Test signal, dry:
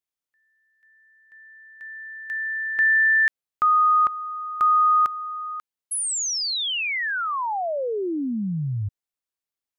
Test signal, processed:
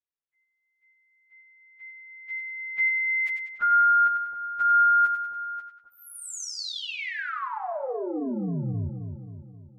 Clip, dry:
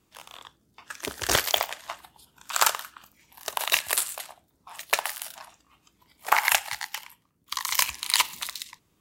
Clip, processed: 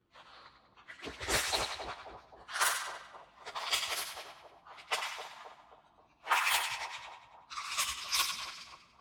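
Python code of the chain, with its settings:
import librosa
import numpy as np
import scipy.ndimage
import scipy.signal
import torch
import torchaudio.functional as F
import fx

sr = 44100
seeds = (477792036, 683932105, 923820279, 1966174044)

y = fx.partial_stretch(x, sr, pct=108)
y = fx.echo_split(y, sr, split_hz=930.0, low_ms=265, high_ms=96, feedback_pct=52, wet_db=-6.5)
y = fx.env_lowpass(y, sr, base_hz=3000.0, full_db=-21.5)
y = y * 10.0 ** (-3.0 / 20.0)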